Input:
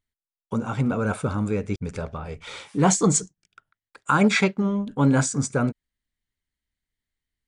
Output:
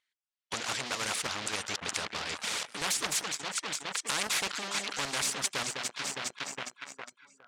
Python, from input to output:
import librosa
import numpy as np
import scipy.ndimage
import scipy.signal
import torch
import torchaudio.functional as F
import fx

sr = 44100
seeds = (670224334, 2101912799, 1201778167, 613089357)

p1 = x + fx.echo_alternate(x, sr, ms=205, hz=1500.0, feedback_pct=75, wet_db=-13, dry=0)
p2 = fx.dereverb_blind(p1, sr, rt60_s=0.83)
p3 = fx.leveller(p2, sr, passes=3)
p4 = scipy.signal.sosfilt(scipy.signal.butter(2, 2600.0, 'lowpass', fs=sr, output='sos'), p3)
p5 = np.diff(p4, prepend=0.0)
p6 = fx.level_steps(p5, sr, step_db=19)
p7 = p5 + F.gain(torch.from_numpy(p6), 1.5).numpy()
p8 = fx.low_shelf(p7, sr, hz=500.0, db=-8.0)
p9 = fx.spectral_comp(p8, sr, ratio=4.0)
y = F.gain(torch.from_numpy(p9), 2.0).numpy()